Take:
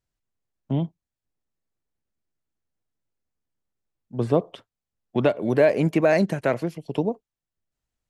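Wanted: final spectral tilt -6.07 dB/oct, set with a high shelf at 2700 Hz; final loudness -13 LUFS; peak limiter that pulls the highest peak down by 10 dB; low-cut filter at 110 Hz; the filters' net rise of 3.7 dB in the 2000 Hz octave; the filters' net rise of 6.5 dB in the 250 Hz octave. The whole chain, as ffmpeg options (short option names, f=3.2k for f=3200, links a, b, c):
-af "highpass=110,equalizer=f=250:t=o:g=9,equalizer=f=2k:t=o:g=7.5,highshelf=f=2.7k:g=-7,volume=12.5dB,alimiter=limit=-2dB:level=0:latency=1"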